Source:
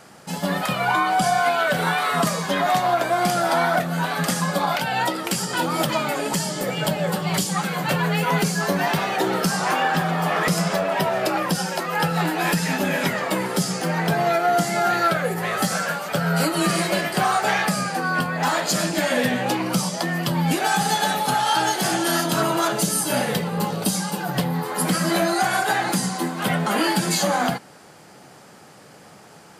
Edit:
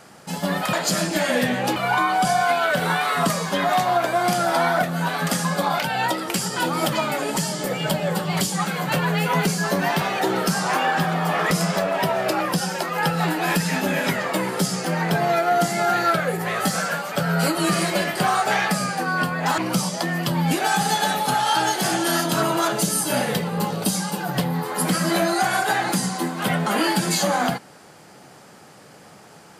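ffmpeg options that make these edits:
ffmpeg -i in.wav -filter_complex "[0:a]asplit=4[link_01][link_02][link_03][link_04];[link_01]atrim=end=0.732[link_05];[link_02]atrim=start=18.548:end=19.582[link_06];[link_03]atrim=start=0.728:end=18.552[link_07];[link_04]atrim=start=19.578[link_08];[link_05][link_06]acrossfade=duration=0.004:curve1=hsin:curve2=hsin[link_09];[link_09][link_07]acrossfade=duration=0.004:curve1=hsin:curve2=hsin[link_10];[link_10][link_08]acrossfade=duration=0.004:curve1=hsin:curve2=hsin" out.wav

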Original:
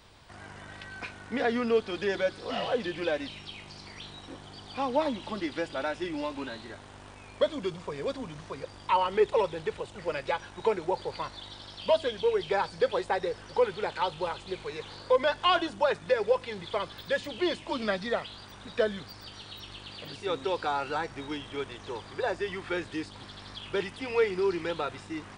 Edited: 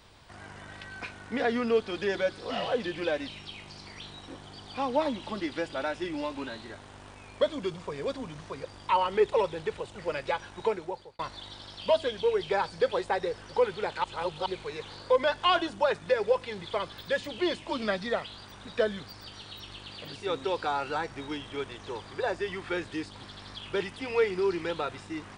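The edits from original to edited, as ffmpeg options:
ffmpeg -i in.wav -filter_complex "[0:a]asplit=4[link_01][link_02][link_03][link_04];[link_01]atrim=end=11.19,asetpts=PTS-STARTPTS,afade=type=out:start_time=10.59:duration=0.6[link_05];[link_02]atrim=start=11.19:end=14.042,asetpts=PTS-STARTPTS,afade=type=in:duration=0.004:curve=hsin[link_06];[link_03]atrim=start=14.038:end=14.462,asetpts=PTS-STARTPTS,areverse[link_07];[link_04]atrim=start=14.458[link_08];[link_05][link_06]concat=n=2:v=0:a=1[link_09];[link_09][link_07]acrossfade=duration=0.004:curve1=hsin:curve2=hsin[link_10];[link_10][link_08]acrossfade=duration=0.004:curve1=hsin:curve2=hsin" out.wav

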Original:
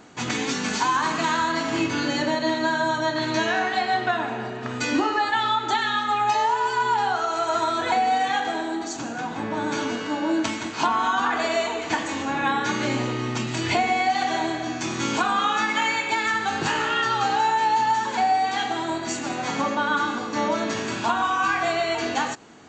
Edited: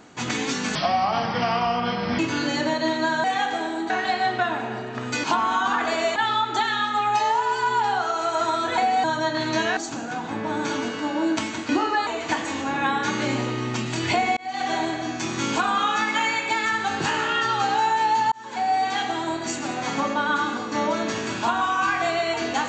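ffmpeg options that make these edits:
ffmpeg -i in.wav -filter_complex "[0:a]asplit=13[link_01][link_02][link_03][link_04][link_05][link_06][link_07][link_08][link_09][link_10][link_11][link_12][link_13];[link_01]atrim=end=0.754[link_14];[link_02]atrim=start=0.75:end=1.8,asetpts=PTS-STARTPTS,asetrate=32193,aresample=44100[link_15];[link_03]atrim=start=1.796:end=2.852[link_16];[link_04]atrim=start=8.178:end=8.842[link_17];[link_05]atrim=start=3.578:end=4.922[link_18];[link_06]atrim=start=10.758:end=11.682[link_19];[link_07]atrim=start=5.298:end=8.182[link_20];[link_08]atrim=start=2.848:end=3.582[link_21];[link_09]atrim=start=8.838:end=10.762[link_22];[link_10]atrim=start=4.918:end=5.302[link_23];[link_11]atrim=start=11.678:end=13.98,asetpts=PTS-STARTPTS,afade=type=out:start_time=2.298:duration=0.004:curve=hsin[link_24];[link_12]atrim=start=13.98:end=17.93,asetpts=PTS-STARTPTS,afade=type=in:duration=0.34,afade=type=out:start_time=3.946:duration=0.004:curve=hsin[link_25];[link_13]atrim=start=17.93,asetpts=PTS-STARTPTS,afade=type=in:duration=0.46[link_26];[link_14][link_15]acrossfade=duration=0.004:curve1=hsin:curve2=hsin[link_27];[link_27][link_16]acrossfade=duration=0.004:curve1=hsin:curve2=hsin[link_28];[link_28][link_17]acrossfade=duration=0.004:curve1=hsin:curve2=hsin[link_29];[link_29][link_18]acrossfade=duration=0.004:curve1=hsin:curve2=hsin[link_30];[link_30][link_19]acrossfade=duration=0.004:curve1=hsin:curve2=hsin[link_31];[link_31][link_20]acrossfade=duration=0.004:curve1=hsin:curve2=hsin[link_32];[link_32][link_21]acrossfade=duration=0.004:curve1=hsin:curve2=hsin[link_33];[link_33][link_22]acrossfade=duration=0.004:curve1=hsin:curve2=hsin[link_34];[link_34][link_23]acrossfade=duration=0.004:curve1=hsin:curve2=hsin[link_35];[link_24][link_25][link_26]concat=n=3:v=0:a=1[link_36];[link_35][link_36]acrossfade=duration=0.004:curve1=hsin:curve2=hsin" out.wav

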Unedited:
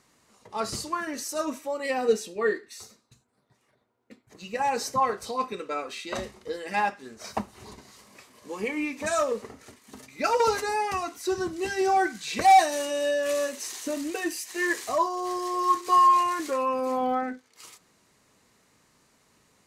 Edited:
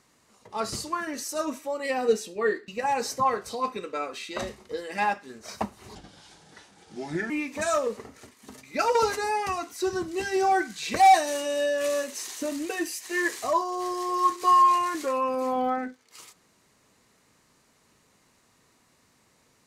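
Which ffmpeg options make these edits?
ffmpeg -i in.wav -filter_complex "[0:a]asplit=4[link_01][link_02][link_03][link_04];[link_01]atrim=end=2.682[link_05];[link_02]atrim=start=4.438:end=7.714[link_06];[link_03]atrim=start=7.71:end=8.75,asetpts=PTS-STARTPTS,asetrate=33957,aresample=44100[link_07];[link_04]atrim=start=8.746[link_08];[link_05][link_06]acrossfade=duration=0.004:curve1=hsin:curve2=hsin[link_09];[link_09][link_07]acrossfade=duration=0.004:curve1=hsin:curve2=hsin[link_10];[link_10][link_08]acrossfade=duration=0.004:curve1=hsin:curve2=hsin" out.wav

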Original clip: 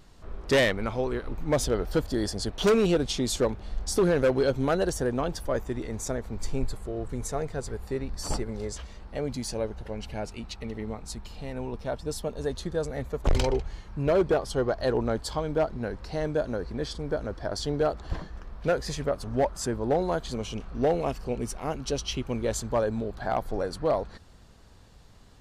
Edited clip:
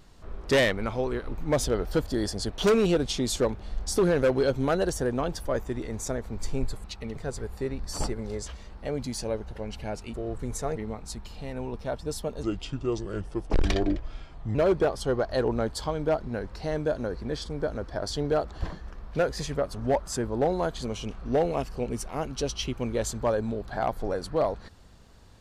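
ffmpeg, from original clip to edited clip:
ffmpeg -i in.wav -filter_complex "[0:a]asplit=7[link_01][link_02][link_03][link_04][link_05][link_06][link_07];[link_01]atrim=end=6.842[link_08];[link_02]atrim=start=10.438:end=10.762[link_09];[link_03]atrim=start=7.458:end=10.442[link_10];[link_04]atrim=start=6.838:end=7.462[link_11];[link_05]atrim=start=10.758:end=12.434[link_12];[link_06]atrim=start=12.43:end=14.04,asetpts=PTS-STARTPTS,asetrate=33516,aresample=44100,atrim=end_sample=93422,asetpts=PTS-STARTPTS[link_13];[link_07]atrim=start=14.036[link_14];[link_08][link_09]acrossfade=duration=0.004:curve1=hsin:curve2=hsin[link_15];[link_15][link_10]acrossfade=duration=0.004:curve1=hsin:curve2=hsin[link_16];[link_16][link_11]acrossfade=duration=0.004:curve1=hsin:curve2=hsin[link_17];[link_17][link_12]acrossfade=duration=0.004:curve1=hsin:curve2=hsin[link_18];[link_18][link_13]acrossfade=duration=0.004:curve1=hsin:curve2=hsin[link_19];[link_19][link_14]acrossfade=duration=0.004:curve1=hsin:curve2=hsin" out.wav

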